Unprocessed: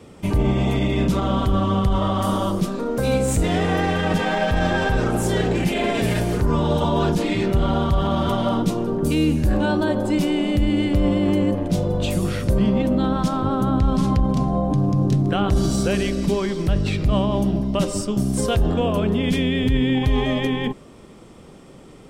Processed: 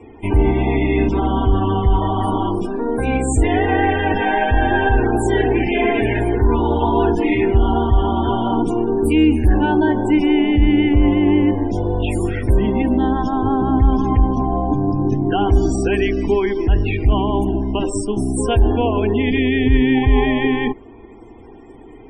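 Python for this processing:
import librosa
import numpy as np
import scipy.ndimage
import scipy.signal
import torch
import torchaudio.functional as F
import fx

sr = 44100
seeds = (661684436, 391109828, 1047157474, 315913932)

y = fx.spec_topn(x, sr, count=64)
y = fx.fixed_phaser(y, sr, hz=840.0, stages=8)
y = F.gain(torch.from_numpy(y), 7.5).numpy()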